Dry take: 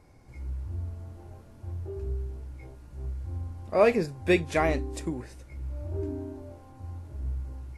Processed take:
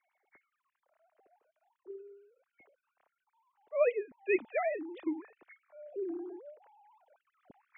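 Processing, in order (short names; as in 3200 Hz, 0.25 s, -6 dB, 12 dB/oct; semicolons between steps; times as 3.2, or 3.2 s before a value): sine-wave speech; dynamic EQ 320 Hz, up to -3 dB, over -33 dBFS, Q 1.6; vocal rider within 4 dB 0.5 s; gain -5.5 dB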